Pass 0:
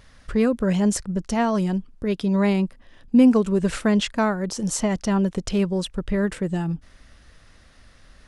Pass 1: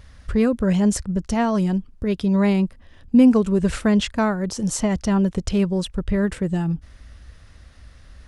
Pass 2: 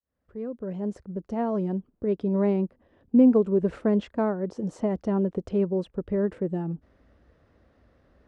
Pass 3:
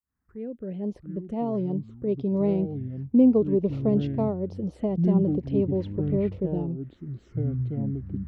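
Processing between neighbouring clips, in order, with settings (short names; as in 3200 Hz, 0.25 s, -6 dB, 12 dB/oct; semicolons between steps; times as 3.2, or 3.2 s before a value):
bell 66 Hz +12 dB 1.6 oct
opening faded in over 1.81 s; band-pass 420 Hz, Q 1.2
envelope phaser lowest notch 560 Hz, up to 1600 Hz, full sweep at -26 dBFS; echoes that change speed 0.533 s, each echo -6 st, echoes 3, each echo -6 dB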